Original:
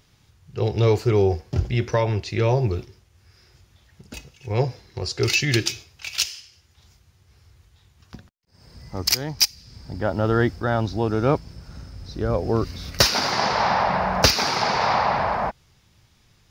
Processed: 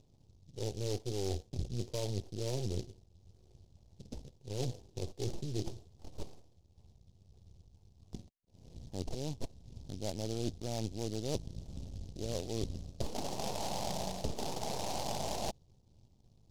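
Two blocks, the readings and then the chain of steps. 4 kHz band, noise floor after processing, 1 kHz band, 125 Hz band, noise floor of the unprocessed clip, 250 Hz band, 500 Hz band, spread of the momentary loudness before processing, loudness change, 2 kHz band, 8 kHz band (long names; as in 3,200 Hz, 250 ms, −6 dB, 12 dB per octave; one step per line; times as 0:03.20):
−20.0 dB, −66 dBFS, −20.0 dB, −15.0 dB, −60 dBFS, −14.0 dB, −16.0 dB, 18 LU, −17.5 dB, −27.5 dB, −15.5 dB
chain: gain on one half-wave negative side −12 dB
inverse Chebyshev low-pass filter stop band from 2,600 Hz, stop band 60 dB
reversed playback
downward compressor 6 to 1, threshold −31 dBFS, peak gain reduction 15.5 dB
reversed playback
short delay modulated by noise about 4,600 Hz, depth 0.12 ms
level −1.5 dB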